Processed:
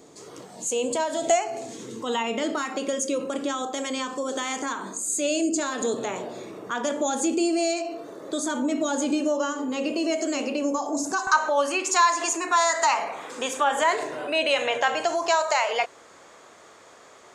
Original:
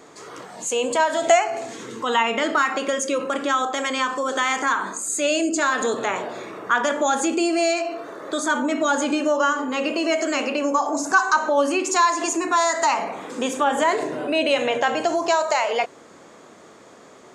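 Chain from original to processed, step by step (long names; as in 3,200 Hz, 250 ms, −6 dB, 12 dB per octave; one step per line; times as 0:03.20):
parametric band 1,500 Hz −12 dB 2 octaves, from 0:11.27 210 Hz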